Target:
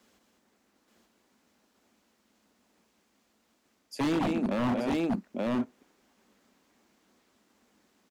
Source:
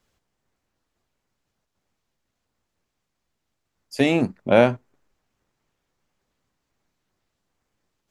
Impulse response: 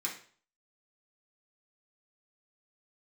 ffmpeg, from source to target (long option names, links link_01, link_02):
-filter_complex "[0:a]lowshelf=frequency=170:width_type=q:width=3:gain=-8.5,areverse,acompressor=threshold=-27dB:ratio=8,areverse,highpass=49,asplit=2[link_01][link_02];[link_02]aecho=0:1:124|203|878:0.282|0.531|0.708[link_03];[link_01][link_03]amix=inputs=2:normalize=0,acrossover=split=360[link_04][link_05];[link_05]acompressor=threshold=-41dB:ratio=2[link_06];[link_04][link_06]amix=inputs=2:normalize=0,aeval=exprs='0.0355*(abs(mod(val(0)/0.0355+3,4)-2)-1)':channel_layout=same,volume=6.5dB"